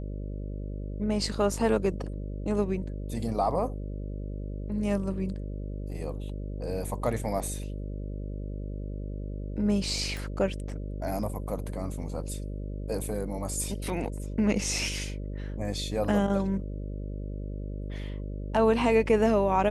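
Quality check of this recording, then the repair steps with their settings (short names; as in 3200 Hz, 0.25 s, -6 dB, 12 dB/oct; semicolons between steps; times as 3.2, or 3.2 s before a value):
buzz 50 Hz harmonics 12 -35 dBFS
10.17 pop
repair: de-click; de-hum 50 Hz, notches 12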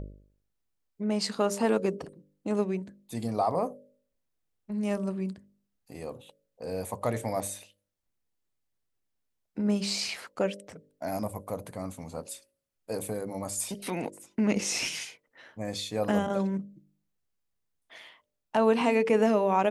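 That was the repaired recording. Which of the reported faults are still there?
none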